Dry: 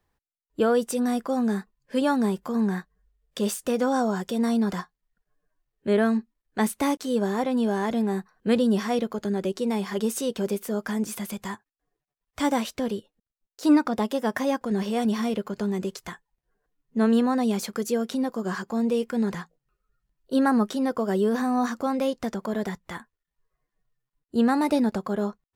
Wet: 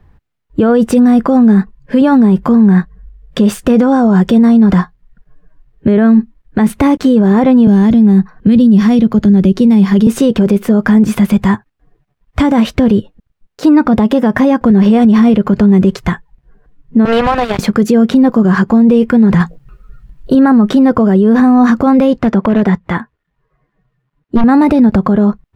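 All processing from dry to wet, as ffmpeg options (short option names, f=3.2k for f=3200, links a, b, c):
-filter_complex "[0:a]asettb=1/sr,asplit=3[a][b][c];[a]atrim=end=7.674[d];[b]atrim=start=7.67:end=10.07,asetpts=PTS-STARTPTS,afade=t=in:d=0.004:c=qsin,afade=t=out:st=2.396:d=0.004:c=qsin,bandreject=f=7.8k:w=11,acrossover=split=280|3000[e][f][g];[f]acompressor=threshold=-46dB:ratio=2:attack=3.2:release=140:knee=2.83:detection=peak[h];[e][h][g]amix=inputs=3:normalize=0[i];[c]atrim=start=10.066[j];[d][i]acrossfade=d=0.004:c1=hsin:c2=qsin[k];[k][j]acrossfade=d=0.004:c1=qsin:c2=hsin,asettb=1/sr,asplit=3[l][m][n];[l]atrim=end=17.054[o];[m]atrim=start=17.05:end=17.59,asetpts=PTS-STARTPTS,afade=t=in:d=0.004:c=qsin,afade=t=out:st=0.536:d=0.004:c=qsin,highpass=f=500:w=0.5412,highpass=f=500:w=1.3066,acrusher=bits=4:mix=0:aa=0.5,acrossover=split=5400[p][q];[q]acompressor=threshold=-49dB:ratio=4:attack=1:release=60[r];[p][r]amix=inputs=2:normalize=0[s];[n]atrim=start=17.586[t];[o][s]acrossfade=d=0.004:c1=hsin:c2=qsin[u];[u][t]acrossfade=d=0.004:c1=qsin:c2=hsin,asettb=1/sr,asplit=3[v][w][x];[v]atrim=end=19.404[y];[w]atrim=start=19.4:end=20.35,asetpts=PTS-STARTPTS,afade=t=in:d=0.004:c=qsin,afade=t=out:st=0.946:d=0.004:c=qsin,highshelf=f=3.8k:g=7,acontrast=76[z];[x]atrim=start=20.346[aa];[y][z]acrossfade=d=0.004:c1=hsin:c2=qsin[ab];[ab][aa]acrossfade=d=0.004:c1=qsin:c2=hsin,asettb=1/sr,asplit=3[ac][ad][ae];[ac]atrim=end=22.174[af];[ad]atrim=start=22.17:end=24.44,asetpts=PTS-STARTPTS,afade=t=in:d=0.004:c=qsin,afade=t=out:st=2.266:d=0.004:c=qsin,highpass=f=230:p=1,highshelf=f=5.2k:g=-9.5,aeval=exprs='0.0668*(abs(mod(val(0)/0.0668+3,4)-2)-1)':c=same[ag];[ae]atrim=start=24.436[ah];[af][ag]acrossfade=d=0.004:c1=hsin:c2=qsin[ai];[ai][ah]acrossfade=d=0.004:c1=qsin:c2=hsin,bass=f=250:g=13,treble=f=4k:g=-15,alimiter=level_in=20dB:limit=-1dB:release=50:level=0:latency=1,volume=-1dB"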